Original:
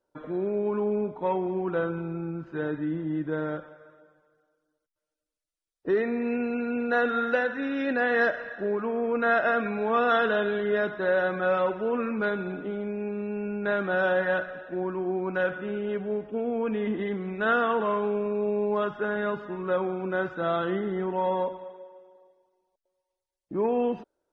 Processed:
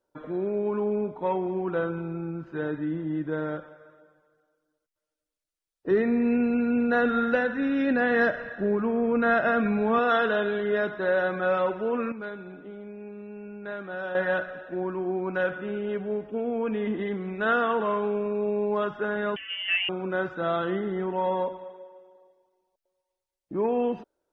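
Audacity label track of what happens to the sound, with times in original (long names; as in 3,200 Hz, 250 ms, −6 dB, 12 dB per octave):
5.910000	9.990000	bass and treble bass +11 dB, treble −2 dB
12.120000	14.150000	clip gain −9 dB
19.360000	19.890000	voice inversion scrambler carrier 3,200 Hz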